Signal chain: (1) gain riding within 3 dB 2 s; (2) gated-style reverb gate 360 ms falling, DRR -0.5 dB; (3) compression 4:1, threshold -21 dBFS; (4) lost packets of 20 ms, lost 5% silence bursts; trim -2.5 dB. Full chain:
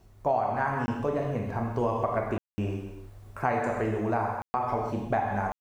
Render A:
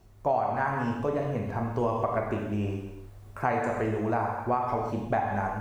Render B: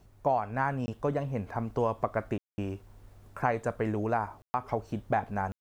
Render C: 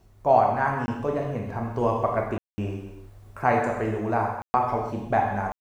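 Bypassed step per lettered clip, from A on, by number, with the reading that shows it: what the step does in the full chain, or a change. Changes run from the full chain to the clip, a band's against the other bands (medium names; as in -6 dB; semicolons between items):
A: 4, momentary loudness spread change -2 LU; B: 2, momentary loudness spread change +2 LU; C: 3, mean gain reduction 2.0 dB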